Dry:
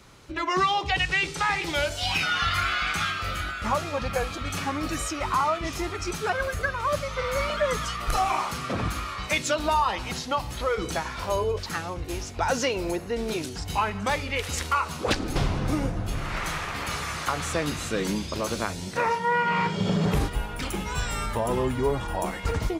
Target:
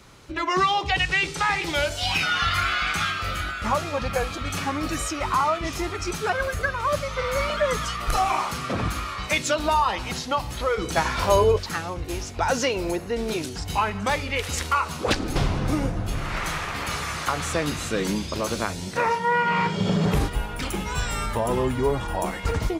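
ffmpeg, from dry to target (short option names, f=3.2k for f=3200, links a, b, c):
-filter_complex "[0:a]asplit=3[a][b][c];[a]afade=t=out:st=10.96:d=0.02[d];[b]acontrast=53,afade=t=in:st=10.96:d=0.02,afade=t=out:st=11.56:d=0.02[e];[c]afade=t=in:st=11.56:d=0.02[f];[d][e][f]amix=inputs=3:normalize=0,volume=2dB"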